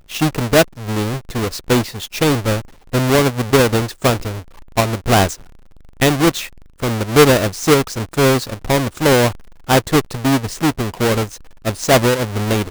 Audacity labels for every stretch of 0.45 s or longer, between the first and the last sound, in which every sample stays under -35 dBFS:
5.450000	6.000000	silence